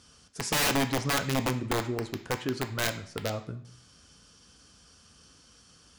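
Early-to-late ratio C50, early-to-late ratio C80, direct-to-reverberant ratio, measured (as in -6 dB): 12.0 dB, 15.5 dB, 6.5 dB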